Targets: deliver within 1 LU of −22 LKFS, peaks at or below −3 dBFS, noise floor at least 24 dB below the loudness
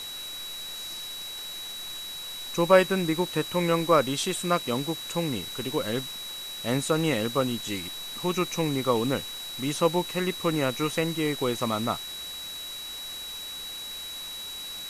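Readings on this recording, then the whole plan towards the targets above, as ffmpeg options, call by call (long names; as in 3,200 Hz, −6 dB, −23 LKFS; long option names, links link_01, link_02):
interfering tone 3,900 Hz; level of the tone −36 dBFS; background noise floor −38 dBFS; target noise floor −52 dBFS; integrated loudness −28.0 LKFS; sample peak −6.5 dBFS; target loudness −22.0 LKFS
→ -af "bandreject=frequency=3900:width=30"
-af "afftdn=noise_reduction=14:noise_floor=-38"
-af "volume=6dB,alimiter=limit=-3dB:level=0:latency=1"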